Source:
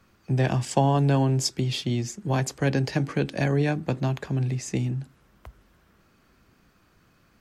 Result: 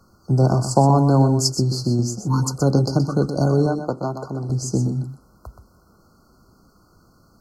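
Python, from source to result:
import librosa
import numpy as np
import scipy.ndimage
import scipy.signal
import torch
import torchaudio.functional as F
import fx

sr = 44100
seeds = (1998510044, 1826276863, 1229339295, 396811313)

p1 = fx.spec_repair(x, sr, seeds[0], start_s=2.2, length_s=0.28, low_hz=380.0, high_hz=830.0, source='after')
p2 = fx.brickwall_bandstop(p1, sr, low_hz=1500.0, high_hz=4100.0)
p3 = fx.bass_treble(p2, sr, bass_db=-11, treble_db=-7, at=(3.66, 4.5))
p4 = p3 + fx.echo_single(p3, sr, ms=124, db=-9.0, dry=0)
y = F.gain(torch.from_numpy(p4), 6.0).numpy()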